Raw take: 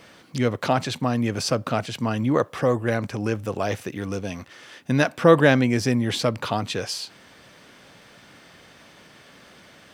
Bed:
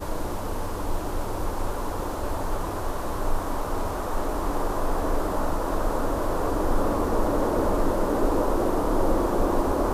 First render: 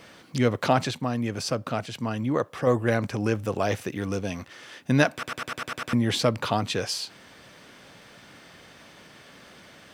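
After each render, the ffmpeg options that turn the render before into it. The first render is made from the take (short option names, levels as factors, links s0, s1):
-filter_complex "[0:a]asplit=11[s0][s1][s2][s3][s4][s5][s6][s7][s8][s9][s10];[s0]atrim=end=0.912[s11];[s1]atrim=start=0.908:end=2.672,asetpts=PTS-STARTPTS,volume=0.596[s12];[s2]atrim=start=2.668:end=5.232[s13];[s3]atrim=start=5.128:end=5.232[s14];[s4]atrim=start=5.128:end=5.232[s15];[s5]atrim=start=5.128:end=5.232[s16];[s6]atrim=start=5.128:end=5.232[s17];[s7]atrim=start=5.128:end=5.232[s18];[s8]atrim=start=5.128:end=5.232[s19];[s9]atrim=start=5.128:end=5.232[s20];[s10]atrim=start=5.928[s21];[s11][s12]acrossfade=d=0.004:c1=hsin:c2=hsin[s22];[s22][s13]acrossfade=d=0.004:c1=hsin:c2=hsin[s23];[s23][s14]acrossfade=d=0.004:c1=hsin:c2=hsin[s24];[s24][s15]acrossfade=d=0.004:c1=hsin:c2=hsin[s25];[s25][s16]acrossfade=d=0.004:c1=hsin:c2=hsin[s26];[s26][s17]acrossfade=d=0.004:c1=hsin:c2=hsin[s27];[s27][s18]acrossfade=d=0.004:c1=hsin:c2=hsin[s28];[s28][s19]acrossfade=d=0.004:c1=hsin:c2=hsin[s29];[s29][s20]acrossfade=d=0.004:c1=hsin:c2=hsin[s30];[s30][s21]acrossfade=d=0.004:c1=hsin:c2=hsin"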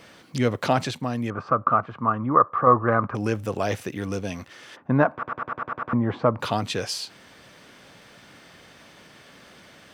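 -filter_complex "[0:a]asettb=1/sr,asplit=3[s0][s1][s2];[s0]atrim=end=1.304[s3];[s1]atrim=start=1.3:end=3.15,asetpts=PTS-STARTPTS,afade=t=in:d=0.004:c=qsin,afade=t=out:st=1.846:d=0.004:c=qsin,lowpass=f=1200:t=q:w=9.6[s4];[s2]atrim=start=3.146[s5];[s3][s4]acrossfade=d=0.004:c1=hsin:c2=qsin[s6];[s6][s5]acrossfade=d=0.004:c1=qsin:c2=hsin,asplit=3[s7][s8][s9];[s7]afade=t=out:st=4.75:d=0.02[s10];[s8]lowpass=f=1100:t=q:w=2.5,afade=t=in:st=4.75:d=0.02,afade=t=out:st=6.39:d=0.02[s11];[s9]afade=t=in:st=6.39:d=0.02[s12];[s10][s11][s12]amix=inputs=3:normalize=0"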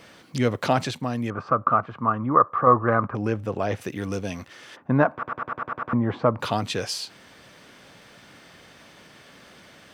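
-filter_complex "[0:a]asplit=3[s0][s1][s2];[s0]afade=t=out:st=3.07:d=0.02[s3];[s1]lowpass=f=2100:p=1,afade=t=in:st=3.07:d=0.02,afade=t=out:st=3.8:d=0.02[s4];[s2]afade=t=in:st=3.8:d=0.02[s5];[s3][s4][s5]amix=inputs=3:normalize=0"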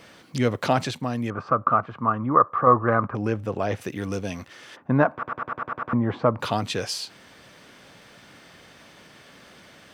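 -af anull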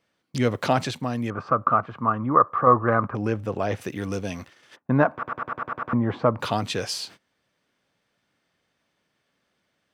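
-af "agate=range=0.0631:threshold=0.00708:ratio=16:detection=peak"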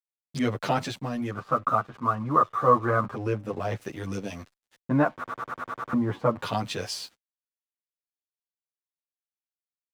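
-filter_complex "[0:a]aeval=exprs='sgn(val(0))*max(abs(val(0))-0.00447,0)':c=same,asplit=2[s0][s1];[s1]adelay=9.4,afreqshift=2.5[s2];[s0][s2]amix=inputs=2:normalize=1"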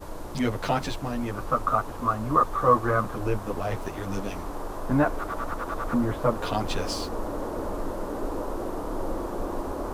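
-filter_complex "[1:a]volume=0.398[s0];[0:a][s0]amix=inputs=2:normalize=0"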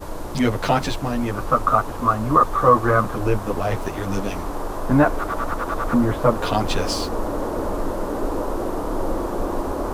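-af "volume=2.11,alimiter=limit=0.708:level=0:latency=1"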